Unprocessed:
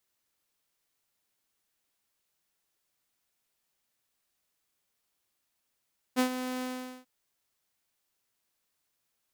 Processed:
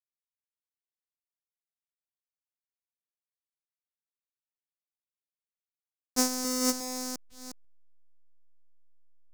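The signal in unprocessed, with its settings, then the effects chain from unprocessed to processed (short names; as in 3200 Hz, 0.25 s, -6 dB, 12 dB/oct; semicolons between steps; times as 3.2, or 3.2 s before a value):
ADSR saw 254 Hz, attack 32 ms, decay 96 ms, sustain -11 dB, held 0.46 s, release 0.431 s -19 dBFS
reverse delay 0.358 s, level -2.5 dB; resonant high shelf 4300 Hz +10.5 dB, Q 3; backlash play -40.5 dBFS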